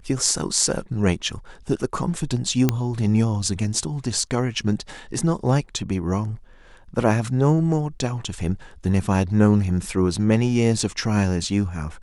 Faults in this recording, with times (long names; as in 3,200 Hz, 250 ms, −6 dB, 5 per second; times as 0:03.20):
0:02.69: click −5 dBFS